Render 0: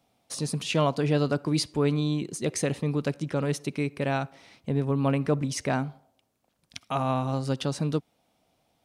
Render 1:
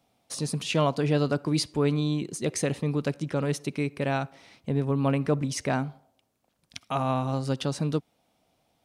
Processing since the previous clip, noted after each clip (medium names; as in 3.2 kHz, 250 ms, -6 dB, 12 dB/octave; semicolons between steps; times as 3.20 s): no audible change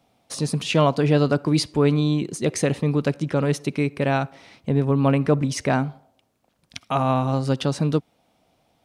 treble shelf 5 kHz -5 dB; trim +6 dB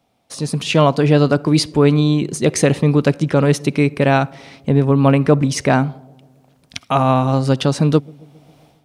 level rider gain up to 15.5 dB; feedback echo behind a low-pass 135 ms, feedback 64%, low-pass 460 Hz, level -24 dB; trim -1 dB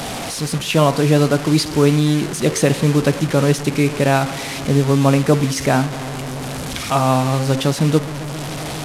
one-bit delta coder 64 kbps, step -19 dBFS; de-hum 89.29 Hz, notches 33; trim -1 dB